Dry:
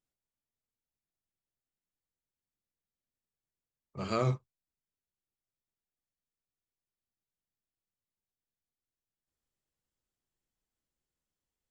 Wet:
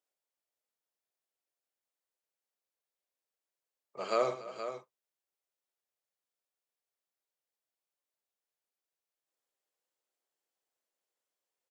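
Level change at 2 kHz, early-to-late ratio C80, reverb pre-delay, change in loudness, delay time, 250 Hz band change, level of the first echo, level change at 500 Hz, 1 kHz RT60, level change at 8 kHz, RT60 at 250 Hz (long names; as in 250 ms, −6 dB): +1.0 dB, no reverb audible, no reverb audible, −1.5 dB, 106 ms, −8.0 dB, −13.0 dB, +4.0 dB, no reverb audible, can't be measured, no reverb audible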